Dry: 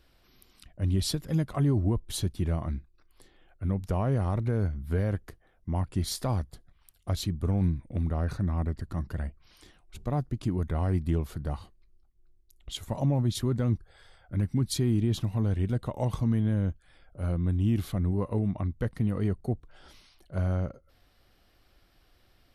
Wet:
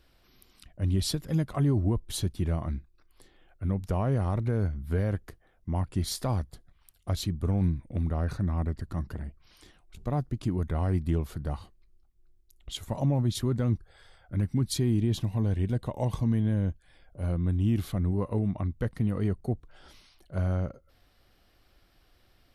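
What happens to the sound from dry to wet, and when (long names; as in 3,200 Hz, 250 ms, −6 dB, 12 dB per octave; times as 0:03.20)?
0:09.14–0:10.02: saturating transformer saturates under 300 Hz
0:14.79–0:17.30: notch filter 1,300 Hz, Q 5.9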